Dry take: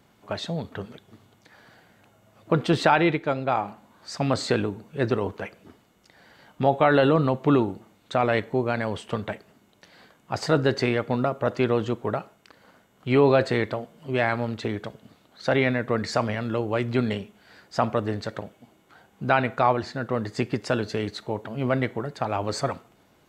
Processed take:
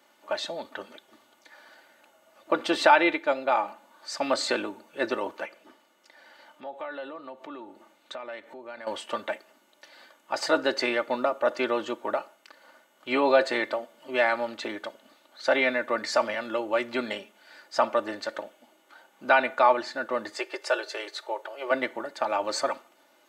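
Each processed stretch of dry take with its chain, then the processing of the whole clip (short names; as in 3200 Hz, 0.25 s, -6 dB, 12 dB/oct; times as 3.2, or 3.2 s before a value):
5.45–8.87 high shelf 5300 Hz -4 dB + compressor 3:1, threshold -39 dBFS
20.37–21.71 elliptic high-pass 370 Hz, stop band 50 dB + notch 1000 Hz, Q 21
whole clip: HPF 480 Hz 12 dB/oct; comb 3.4 ms, depth 68%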